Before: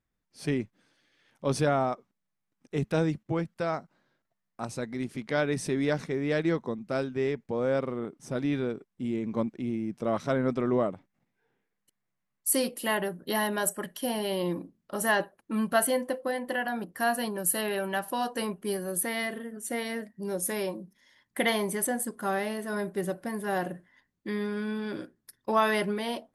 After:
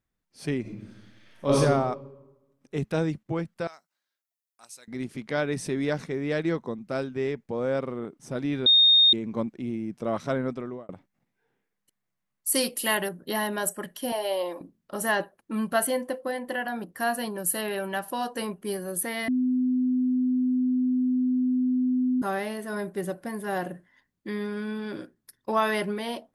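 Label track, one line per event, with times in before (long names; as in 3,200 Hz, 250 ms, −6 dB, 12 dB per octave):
0.610000	1.560000	thrown reverb, RT60 1.1 s, DRR −8 dB
3.670000	4.880000	first difference
8.660000	9.130000	beep over 3,690 Hz −14 dBFS
10.340000	10.890000	fade out
12.550000	13.090000	high-shelf EQ 2,100 Hz +9 dB
14.120000	14.610000	high-pass with resonance 620 Hz, resonance Q 2.4
19.280000	22.220000	beep over 253 Hz −21 dBFS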